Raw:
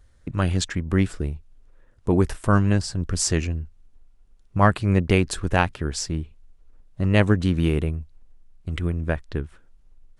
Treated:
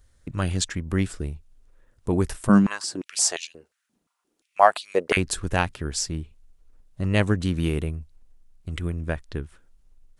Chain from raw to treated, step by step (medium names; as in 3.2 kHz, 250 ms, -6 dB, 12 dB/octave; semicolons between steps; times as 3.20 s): treble shelf 4.9 kHz +9 dB; 2.49–5.17 s: step-sequenced high-pass 5.7 Hz 210–3600 Hz; trim -3.5 dB